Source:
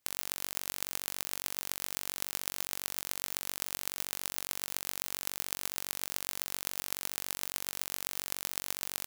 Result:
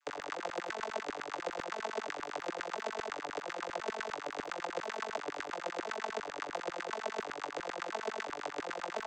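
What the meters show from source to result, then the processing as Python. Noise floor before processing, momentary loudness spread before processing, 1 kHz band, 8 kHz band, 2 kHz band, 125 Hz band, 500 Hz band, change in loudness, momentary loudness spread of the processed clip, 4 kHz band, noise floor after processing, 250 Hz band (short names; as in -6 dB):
-78 dBFS, 1 LU, +9.0 dB, -16.0 dB, +3.0 dB, -4.5 dB, +12.5 dB, -4.5 dB, 2 LU, -7.5 dB, -45 dBFS, +6.5 dB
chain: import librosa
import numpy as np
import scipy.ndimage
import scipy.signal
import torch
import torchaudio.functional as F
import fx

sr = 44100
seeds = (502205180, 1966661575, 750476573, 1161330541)

y = fx.vocoder_arp(x, sr, chord='minor triad', root=50, every_ms=344)
y = fx.filter_lfo_highpass(y, sr, shape='saw_down', hz=10.0, low_hz=330.0, high_hz=1900.0, q=4.2)
y = fx.dmg_crackle(y, sr, seeds[0], per_s=11.0, level_db=-54.0)
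y = y * librosa.db_to_amplitude(2.0)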